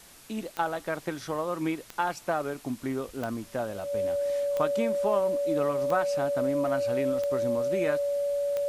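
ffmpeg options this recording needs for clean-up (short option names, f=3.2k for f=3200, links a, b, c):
-af "adeclick=t=4,bandreject=f=570:w=30,afwtdn=0.0028"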